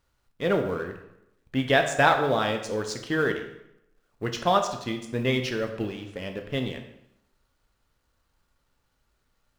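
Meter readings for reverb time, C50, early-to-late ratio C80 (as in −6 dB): 0.85 s, 8.0 dB, 10.5 dB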